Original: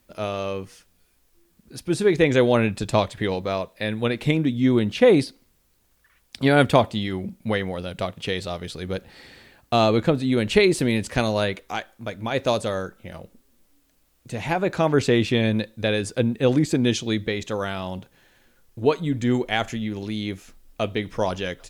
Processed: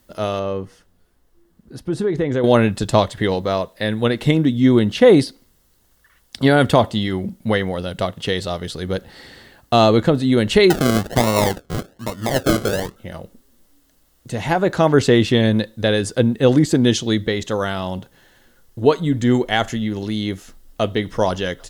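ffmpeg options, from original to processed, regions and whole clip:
-filter_complex "[0:a]asettb=1/sr,asplit=3[s0][s1][s2];[s0]atrim=end=0.394[s3];[s1]atrim=start=0.39:end=2.44,asetpts=PTS-STARTPTS,afade=t=in:d=0.004:c=qsin,afade=t=out:st=2.046:d=0.004:c=qsin,highshelf=f=2400:g=-12,acompressor=threshold=0.0708:ratio=3:attack=3.2:release=140:knee=1:detection=peak[s4];[s2]atrim=start=2.436[s5];[s3][s4]acrossfade=d=0.004:c1=hsin:c2=qsin[s6];[s6][s5]acrossfade=d=0.004:c1=qsin:c2=hsin,asettb=1/sr,asplit=3[s7][s8][s9];[s7]atrim=end=10.704[s10];[s8]atrim=start=10.7:end=12.96,asetpts=PTS-STARTPTS,afade=t=in:d=0.004:c=qsin,afade=t=out:st=2.256:d=0.004:c=qsin,highpass=46,acrusher=samples=38:mix=1:aa=0.000001:lfo=1:lforange=22.8:lforate=1.2[s11];[s9]atrim=start=12.956[s12];[s10][s11]acrossfade=d=0.004:c1=hsin:c2=qsin[s13];[s13][s12]acrossfade=d=0.004:c1=qsin:c2=hsin,bandreject=f=2400:w=5.7,alimiter=level_in=2.11:limit=0.891:release=50:level=0:latency=1,volume=0.891"

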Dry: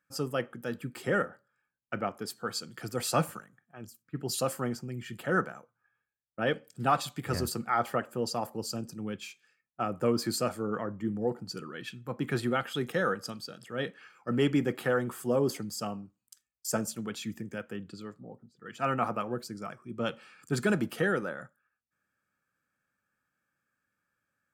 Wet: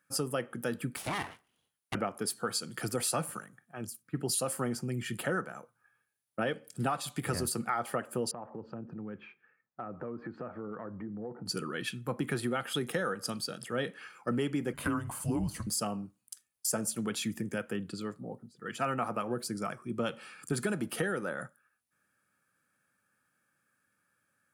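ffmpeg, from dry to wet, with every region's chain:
-filter_complex "[0:a]asettb=1/sr,asplit=3[s0][s1][s2];[s0]atrim=end=0.964[s3];[s1]atrim=start=0.96:end=1.95,asetpts=PTS-STARTPTS,afade=t=in:d=0.004:c=qsin,afade=t=out:st=0.986:d=0.004:c=qsin,acompressor=threshold=0.0224:ratio=2:attack=3.2:release=140:knee=1:detection=peak,aeval=exprs='abs(val(0))':c=same[s4];[s2]atrim=start=1.946[s5];[s3][s4]acrossfade=d=0.004:c1=hsin:c2=qsin[s6];[s6][s5]acrossfade=d=0.004:c1=qsin:c2=hsin,asettb=1/sr,asplit=3[s7][s8][s9];[s7]atrim=end=8.314[s10];[s8]atrim=start=8.31:end=11.46,asetpts=PTS-STARTPTS,afade=t=in:d=0.004:c=qsin,afade=t=out:st=3.146:d=0.004:c=qsin,lowpass=f=1800:w=0.5412,lowpass=f=1800:w=1.3066,acompressor=threshold=0.00708:ratio=5:attack=3.2:release=140:knee=1:detection=peak[s11];[s9]atrim=start=11.456[s12];[s10][s11]acrossfade=d=0.004:c1=hsin:c2=qsin[s13];[s13][s12]acrossfade=d=0.004:c1=qsin:c2=hsin,asettb=1/sr,asplit=3[s14][s15][s16];[s14]atrim=end=14.734[s17];[s15]atrim=start=14.73:end=15.67,asetpts=PTS-STARTPTS,afade=t=in:d=0.004:c=qsin,afade=t=out:st=0.936:d=0.004:c=qsin,deesser=1,afreqshift=-230[s18];[s16]atrim=start=15.666[s19];[s17][s18]acrossfade=d=0.004:c1=hsin:c2=qsin[s20];[s20][s19]acrossfade=d=0.004:c1=qsin:c2=hsin,highpass=86,equalizer=f=9900:t=o:w=0.26:g=13,acompressor=threshold=0.02:ratio=6,volume=1.78"

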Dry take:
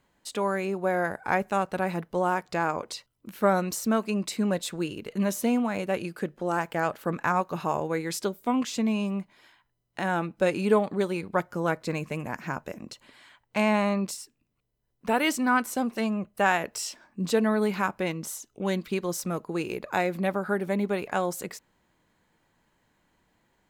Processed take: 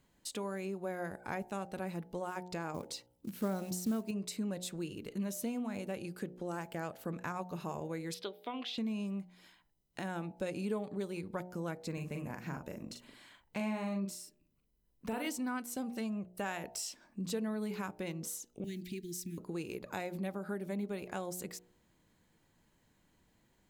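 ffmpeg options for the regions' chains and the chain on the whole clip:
-filter_complex "[0:a]asettb=1/sr,asplit=3[s0][s1][s2];[s0]atrim=end=2.744[s3];[s1]atrim=start=2.74:end=4.11,asetpts=PTS-STARTPTS,afade=t=in:d=0.004:c=qsin,afade=t=out:st=1.366:d=0.004:c=qsin,highpass=f=150:p=1,lowshelf=f=310:g=12,acrusher=bits=6:mode=log:mix=0:aa=0.000001[s4];[s2]atrim=start=4.106[s5];[s3][s4]acrossfade=d=0.004:c1=hsin:c2=qsin[s6];[s6][s5]acrossfade=d=0.004:c1=qsin:c2=hsin,asettb=1/sr,asplit=3[s7][s8][s9];[s7]atrim=end=8.144[s10];[s8]atrim=start=8.14:end=8.78,asetpts=PTS-STARTPTS,afade=t=in:d=0.004:c=qsin,afade=t=out:st=0.636:d=0.004:c=qsin,highpass=440,highshelf=f=5100:t=q:w=3:g=-13.5,acompressor=mode=upward:threshold=0.00282:ratio=2.5:attack=3.2:release=140:knee=2.83:detection=peak[s11];[s9]atrim=start=8.776[s12];[s10][s11]acrossfade=d=0.004:c1=hsin:c2=qsin[s13];[s13][s12]acrossfade=d=0.004:c1=qsin:c2=hsin,asettb=1/sr,asplit=3[s14][s15][s16];[s14]atrim=end=11.934[s17];[s15]atrim=start=11.93:end=15.27,asetpts=PTS-STARTPTS,afade=t=in:d=0.004:c=qsin,afade=t=out:st=3.336:d=0.004:c=qsin,equalizer=f=6000:t=o:w=2.2:g=-3.5,asplit=2[s18][s19];[s19]adelay=41,volume=0.562[s20];[s18][s20]amix=inputs=2:normalize=0,atrim=end_sample=147294[s21];[s16]atrim=start=15.266[s22];[s17][s21]acrossfade=d=0.004:c1=hsin:c2=qsin[s23];[s23][s22]acrossfade=d=0.004:c1=qsin:c2=hsin,asettb=1/sr,asplit=3[s24][s25][s26];[s24]atrim=end=18.644[s27];[s25]atrim=start=18.64:end=19.38,asetpts=PTS-STARTPTS,afade=t=in:d=0.004:c=qsin,afade=t=out:st=0.736:d=0.004:c=qsin,acrusher=bits=8:mode=log:mix=0:aa=0.000001,acompressor=threshold=0.01:ratio=1.5:attack=3.2:release=140:knee=1:detection=peak,asuperstop=centerf=820:order=20:qfactor=0.64[s28];[s26]atrim=start=19.376[s29];[s27][s28]acrossfade=d=0.004:c1=hsin:c2=qsin[s30];[s30][s29]acrossfade=d=0.004:c1=qsin:c2=hsin,equalizer=f=1200:w=0.43:g=-8,bandreject=f=60.28:t=h:w=4,bandreject=f=120.56:t=h:w=4,bandreject=f=180.84:t=h:w=4,bandreject=f=241.12:t=h:w=4,bandreject=f=301.4:t=h:w=4,bandreject=f=361.68:t=h:w=4,bandreject=f=421.96:t=h:w=4,bandreject=f=482.24:t=h:w=4,bandreject=f=542.52:t=h:w=4,bandreject=f=602.8:t=h:w=4,bandreject=f=663.08:t=h:w=4,bandreject=f=723.36:t=h:w=4,bandreject=f=783.64:t=h:w=4,bandreject=f=843.92:t=h:w=4,bandreject=f=904.2:t=h:w=4,acompressor=threshold=0.00631:ratio=2,volume=1.19"

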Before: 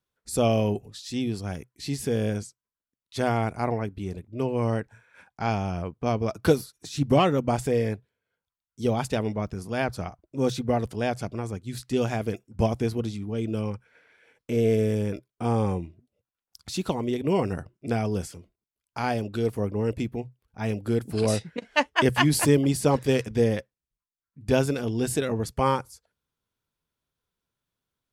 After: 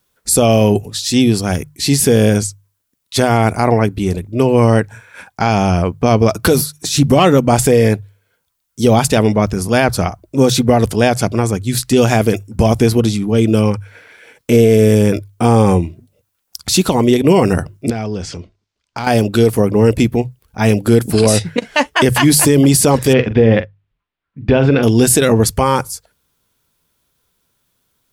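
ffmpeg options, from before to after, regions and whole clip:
-filter_complex "[0:a]asettb=1/sr,asplit=3[s0][s1][s2];[s0]atrim=end=17.904[s3];[s1]atrim=start=17.9:end=19.07,asetpts=PTS-STARTPTS,afade=t=in:d=0.004:c=qsin,afade=t=out:st=1.166:d=0.004:c=qsin,lowpass=f=5700:w=0.5412,lowpass=f=5700:w=1.3066,acompressor=threshold=0.0126:ratio=3:attack=3.2:release=140:knee=1:detection=peak,asoftclip=type=hard:threshold=0.0299[s4];[s2]atrim=start=19.066[s5];[s3][s4]acrossfade=d=0.004:c1=hsin:c2=qsin[s6];[s6][s5]acrossfade=d=0.004:c1=qsin:c2=hsin,asettb=1/sr,asplit=3[s7][s8][s9];[s7]atrim=end=23.134[s10];[s8]atrim=start=23.13:end=24.83,asetpts=PTS-STARTPTS,afade=t=in:d=0.004:c=qsin,afade=t=out:st=1.696:d=0.004:c=qsin,lowpass=f=3100:w=0.5412,lowpass=f=3100:w=1.3066,asplit=2[s11][s12];[s12]adelay=44,volume=0.237[s13];[s11][s13]amix=inputs=2:normalize=0,atrim=end_sample=74970[s14];[s9]atrim=start=24.826[s15];[s10][s14]acrossfade=d=0.004:c1=hsin:c2=qsin[s16];[s16][s15]acrossfade=d=0.004:c1=qsin:c2=hsin,highshelf=f=6300:g=8.5,bandreject=f=50:t=h:w=6,bandreject=f=100:t=h:w=6,bandreject=f=150:t=h:w=6,alimiter=level_in=7.5:limit=0.891:release=50:level=0:latency=1,volume=0.891"

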